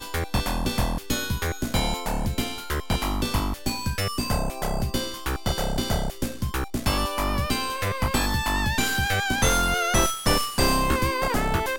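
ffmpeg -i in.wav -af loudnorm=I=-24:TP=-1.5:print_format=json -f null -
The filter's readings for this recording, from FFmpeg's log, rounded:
"input_i" : "-24.7",
"input_tp" : "-6.5",
"input_lra" : "4.7",
"input_thresh" : "-34.7",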